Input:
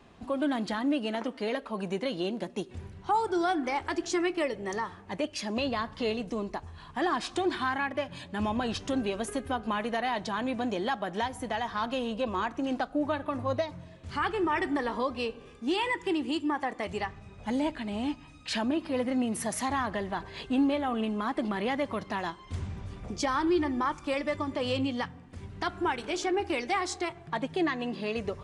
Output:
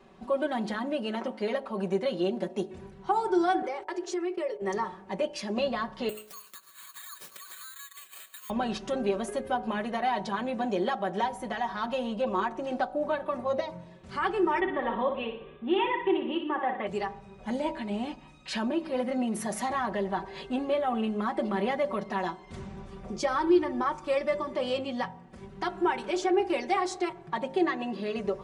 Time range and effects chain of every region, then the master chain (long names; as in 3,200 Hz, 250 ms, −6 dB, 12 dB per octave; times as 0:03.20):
0:03.62–0:04.62: noise gate −40 dBFS, range −30 dB + low shelf with overshoot 300 Hz −9.5 dB, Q 3 + downward compressor 5 to 1, threshold −32 dBFS
0:06.09–0:08.50: Chebyshev high-pass filter 1,100 Hz, order 6 + downward compressor 10 to 1, threshold −48 dBFS + bad sample-rate conversion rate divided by 8×, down none, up zero stuff
0:14.60–0:16.87: Butterworth low-pass 3,700 Hz 96 dB per octave + flutter between parallel walls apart 10.2 metres, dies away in 0.5 s
whole clip: parametric band 520 Hz +6.5 dB 2.8 octaves; comb filter 5.3 ms, depth 72%; hum removal 53.3 Hz, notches 18; level −5 dB